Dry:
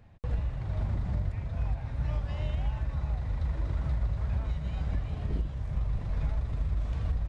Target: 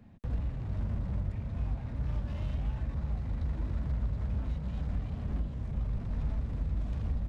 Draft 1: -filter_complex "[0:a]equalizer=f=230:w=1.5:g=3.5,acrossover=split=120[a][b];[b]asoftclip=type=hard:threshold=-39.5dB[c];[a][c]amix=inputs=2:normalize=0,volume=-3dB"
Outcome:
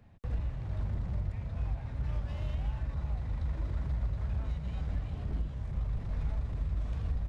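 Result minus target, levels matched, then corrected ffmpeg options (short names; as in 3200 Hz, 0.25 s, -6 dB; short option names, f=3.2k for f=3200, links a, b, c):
250 Hz band -3.5 dB
-filter_complex "[0:a]equalizer=f=230:w=1.5:g=13.5,acrossover=split=120[a][b];[b]asoftclip=type=hard:threshold=-39.5dB[c];[a][c]amix=inputs=2:normalize=0,volume=-3dB"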